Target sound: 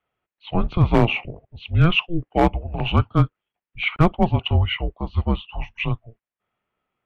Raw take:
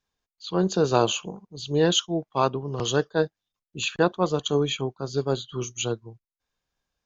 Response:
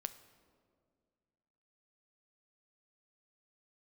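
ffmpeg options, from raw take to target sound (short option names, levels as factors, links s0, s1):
-af "highpass=f=350:t=q:w=0.5412,highpass=f=350:t=q:w=1.307,lowpass=f=3100:t=q:w=0.5176,lowpass=f=3100:t=q:w=0.7071,lowpass=f=3100:t=q:w=1.932,afreqshift=-340,volume=5.96,asoftclip=hard,volume=0.168,volume=2.37"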